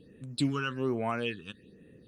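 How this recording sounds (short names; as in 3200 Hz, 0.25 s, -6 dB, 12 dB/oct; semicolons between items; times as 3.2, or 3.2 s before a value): phasing stages 8, 1.2 Hz, lowest notch 570–5000 Hz; Opus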